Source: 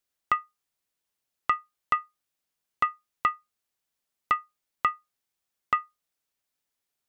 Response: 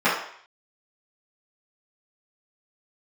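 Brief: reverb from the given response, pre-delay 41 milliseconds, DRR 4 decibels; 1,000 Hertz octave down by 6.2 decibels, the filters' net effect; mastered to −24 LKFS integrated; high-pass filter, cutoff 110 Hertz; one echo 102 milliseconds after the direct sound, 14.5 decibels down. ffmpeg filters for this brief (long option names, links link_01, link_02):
-filter_complex "[0:a]highpass=110,equalizer=frequency=1000:width_type=o:gain=-8.5,aecho=1:1:102:0.188,asplit=2[link_01][link_02];[1:a]atrim=start_sample=2205,adelay=41[link_03];[link_02][link_03]afir=irnorm=-1:irlink=0,volume=-24dB[link_04];[link_01][link_04]amix=inputs=2:normalize=0,volume=10dB"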